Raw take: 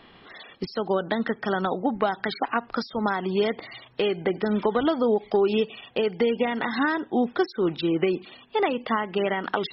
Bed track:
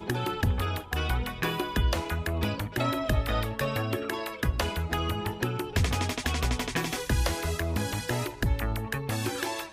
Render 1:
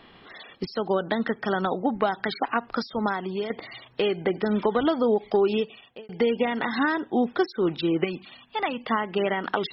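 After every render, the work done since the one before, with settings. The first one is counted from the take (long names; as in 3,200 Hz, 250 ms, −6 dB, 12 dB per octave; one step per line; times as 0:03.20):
0:03.00–0:03.50: fade out, to −9 dB
0:05.45–0:06.09: fade out
0:08.04–0:08.87: parametric band 410 Hz −11.5 dB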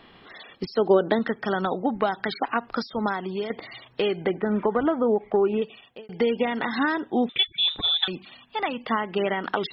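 0:00.64–0:01.19: dynamic equaliser 390 Hz, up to +8 dB, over −37 dBFS, Q 0.98
0:04.34–0:05.62: low-pass filter 2,200 Hz 24 dB per octave
0:07.29–0:08.08: voice inversion scrambler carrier 3,800 Hz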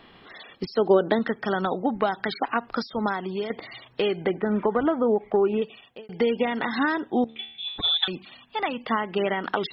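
0:07.24–0:07.78: tuned comb filter 75 Hz, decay 0.64 s, mix 90%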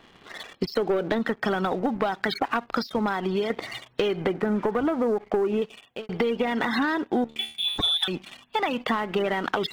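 leveller curve on the samples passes 2
downward compressor, threshold −22 dBFS, peak gain reduction 10.5 dB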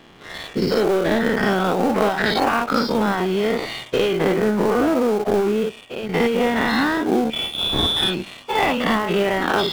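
every bin's largest magnitude spread in time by 120 ms
in parallel at −11 dB: sample-rate reduction 1,900 Hz, jitter 20%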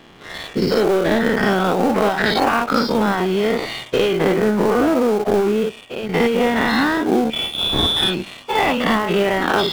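level +2 dB
brickwall limiter −3 dBFS, peak gain reduction 2 dB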